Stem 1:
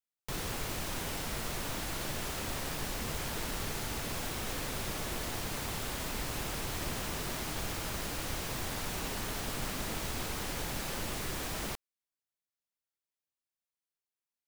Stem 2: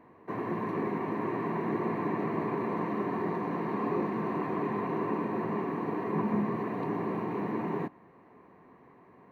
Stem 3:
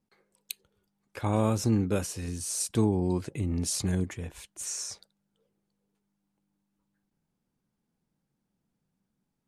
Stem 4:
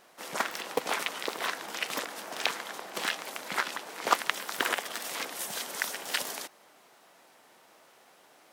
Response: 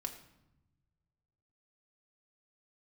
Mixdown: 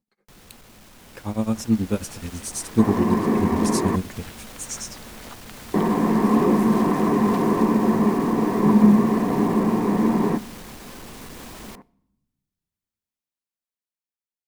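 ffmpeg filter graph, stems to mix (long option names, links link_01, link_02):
-filter_complex "[0:a]alimiter=level_in=3dB:limit=-24dB:level=0:latency=1:release=422,volume=-3dB,asoftclip=type=tanh:threshold=-37.5dB,volume=-8.5dB,asplit=2[link_01][link_02];[link_02]volume=-16.5dB[link_03];[1:a]highshelf=frequency=3400:gain=-10.5,adelay=2500,volume=-0.5dB,asplit=3[link_04][link_05][link_06];[link_04]atrim=end=3.96,asetpts=PTS-STARTPTS,afade=type=out:start_time=3.956:duration=0.004:curve=hsin[link_07];[link_05]atrim=start=3.96:end=5.74,asetpts=PTS-STARTPTS,volume=0[link_08];[link_06]atrim=start=5.74,asetpts=PTS-STARTPTS,afade=type=in:duration=0.004:curve=hsin[link_09];[link_07][link_08][link_09]concat=n=3:v=0:a=1,asplit=2[link_10][link_11];[link_11]volume=-10dB[link_12];[2:a]acontrast=50,tremolo=f=9.3:d=0.94,volume=-8.5dB[link_13];[3:a]acompressor=threshold=-35dB:ratio=6,adelay=1200,volume=-16dB[link_14];[4:a]atrim=start_sample=2205[link_15];[link_03][link_12]amix=inputs=2:normalize=0[link_16];[link_16][link_15]afir=irnorm=-1:irlink=0[link_17];[link_01][link_10][link_13][link_14][link_17]amix=inputs=5:normalize=0,equalizer=frequency=220:width=5.1:gain=9,dynaudnorm=framelen=460:gausssize=7:maxgain=9dB"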